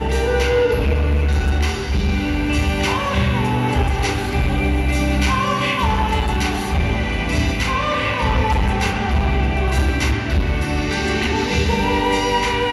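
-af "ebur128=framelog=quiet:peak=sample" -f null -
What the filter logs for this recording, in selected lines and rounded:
Integrated loudness:
  I:         -18.9 LUFS
  Threshold: -28.9 LUFS
Loudness range:
  LRA:         0.6 LU
  Threshold: -39.0 LUFS
  LRA low:   -19.3 LUFS
  LRA high:  -18.7 LUFS
Sample peak:
  Peak:       -5.2 dBFS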